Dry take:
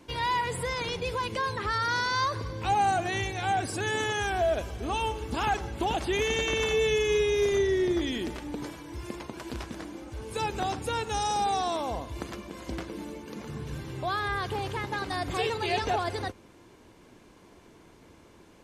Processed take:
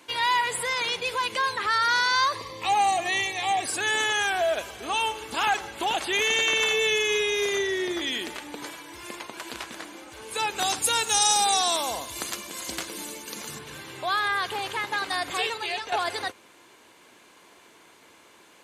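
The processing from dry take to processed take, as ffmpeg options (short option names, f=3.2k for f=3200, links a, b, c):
-filter_complex "[0:a]asettb=1/sr,asplit=3[a][b][c];[a]atrim=end=2.334[d];[b]atrim=start=2.33:end=3.66,asetpts=PTS-STARTPTS,afade=t=in:d=0.004:c=qsin,afade=t=out:st=1.326:d=0.004:c=qsin,asuperstop=centerf=1500:order=8:qfactor=5.5[e];[c]atrim=start=3.656[f];[d][e]acrossfade=d=0.004:c1=hsin:c2=qsin[g];[g][f]acrossfade=d=0.004:c1=qsin:c2=hsin,asettb=1/sr,asplit=3[h][i][j];[h]atrim=end=10.594[k];[i]atrim=start=10.59:end=13.59,asetpts=PTS-STARTPTS,afade=t=in:d=0.004:c=qsin,afade=t=out:st=2.996:d=0.004:c=qsin,bass=f=250:g=4,treble=f=4k:g=12[l];[j]atrim=start=13.586[m];[k][l]acrossfade=d=0.004:c1=hsin:c2=qsin[n];[n][m]acrossfade=d=0.004:c1=qsin:c2=hsin,asplit=2[o][p];[o]atrim=end=15.92,asetpts=PTS-STARTPTS,afade=t=out:st=15.24:d=0.68:silence=0.298538[q];[p]atrim=start=15.92,asetpts=PTS-STARTPTS,afade=t=in:d=0.004:c=hsin:silence=0.298538[r];[q][r]concat=n=2:v=0:a=1,highpass=f=1.5k:p=1,equalizer=f=5.4k:w=4.3:g=-5.5,volume=9dB"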